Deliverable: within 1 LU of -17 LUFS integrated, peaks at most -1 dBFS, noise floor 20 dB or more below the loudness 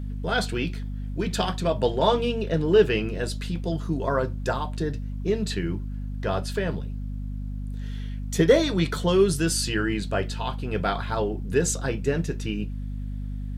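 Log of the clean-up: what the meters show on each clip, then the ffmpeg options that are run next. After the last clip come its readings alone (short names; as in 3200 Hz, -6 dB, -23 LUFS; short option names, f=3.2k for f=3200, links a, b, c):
hum 50 Hz; harmonics up to 250 Hz; hum level -29 dBFS; loudness -26.0 LUFS; peak -7.0 dBFS; loudness target -17.0 LUFS
-> -af "bandreject=f=50:t=h:w=6,bandreject=f=100:t=h:w=6,bandreject=f=150:t=h:w=6,bandreject=f=200:t=h:w=6,bandreject=f=250:t=h:w=6"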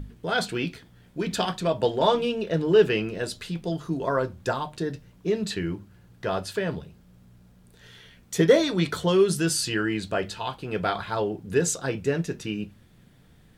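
hum none; loudness -26.0 LUFS; peak -7.5 dBFS; loudness target -17.0 LUFS
-> -af "volume=9dB,alimiter=limit=-1dB:level=0:latency=1"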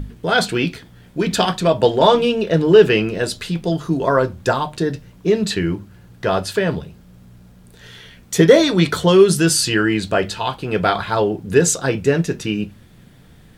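loudness -17.5 LUFS; peak -1.0 dBFS; noise floor -46 dBFS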